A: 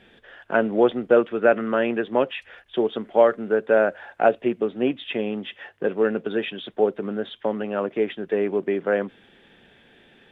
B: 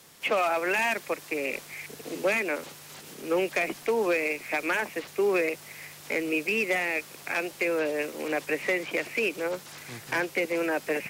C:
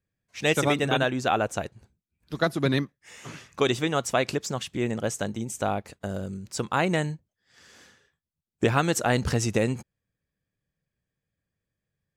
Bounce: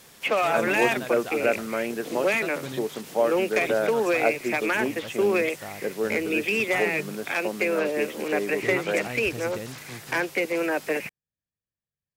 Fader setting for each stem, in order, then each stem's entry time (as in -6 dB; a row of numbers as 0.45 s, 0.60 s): -6.5 dB, +2.0 dB, -12.5 dB; 0.00 s, 0.00 s, 0.00 s